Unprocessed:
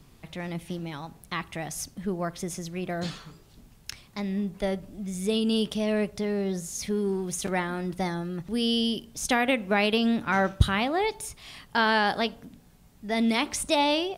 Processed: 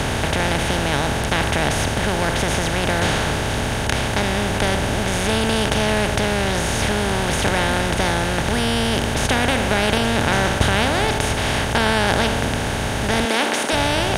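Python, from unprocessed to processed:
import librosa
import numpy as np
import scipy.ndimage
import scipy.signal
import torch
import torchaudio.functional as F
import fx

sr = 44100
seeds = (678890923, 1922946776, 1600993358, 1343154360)

y = fx.bin_compress(x, sr, power=0.2)
y = fx.highpass(y, sr, hz=230.0, slope=24, at=(13.25, 13.73))
y = y * 10.0 ** (-2.5 / 20.0)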